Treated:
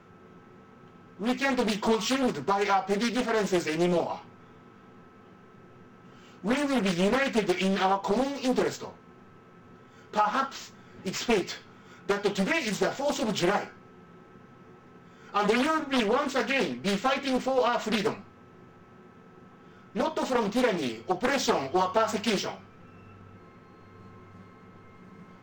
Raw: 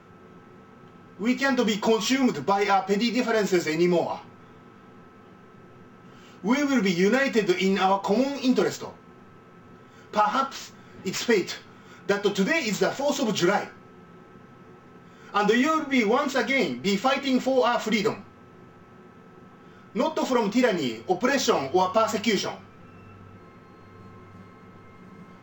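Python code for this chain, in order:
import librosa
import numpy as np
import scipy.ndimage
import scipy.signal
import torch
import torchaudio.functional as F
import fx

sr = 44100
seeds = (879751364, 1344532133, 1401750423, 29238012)

y = fx.doppler_dist(x, sr, depth_ms=0.74)
y = y * 10.0 ** (-3.0 / 20.0)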